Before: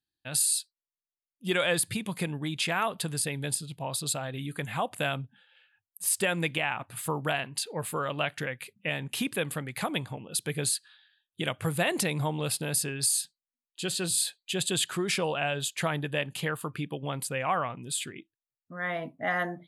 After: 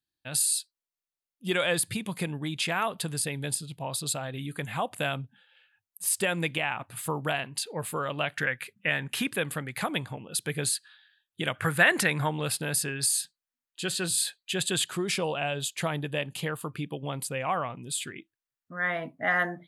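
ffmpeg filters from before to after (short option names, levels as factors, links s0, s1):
-af "asetnsamples=n=441:p=0,asendcmd='8.37 equalizer g 9.5;9.3 equalizer g 3.5;11.55 equalizer g 14;12.29 equalizer g 5.5;14.82 equalizer g -3;18.06 equalizer g 6',equalizer=f=1600:t=o:w=0.91:g=0"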